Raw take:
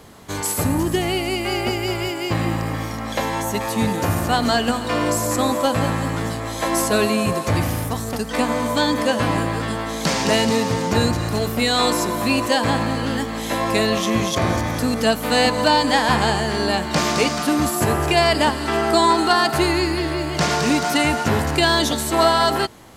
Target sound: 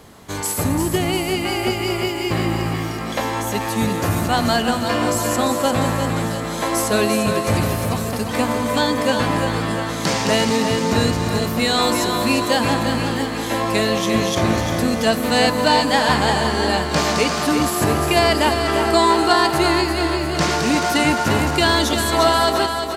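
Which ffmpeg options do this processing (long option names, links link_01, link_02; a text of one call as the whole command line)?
ffmpeg -i in.wav -af "aecho=1:1:348|696|1044|1392|1740|2088|2436:0.447|0.246|0.135|0.0743|0.0409|0.0225|0.0124" out.wav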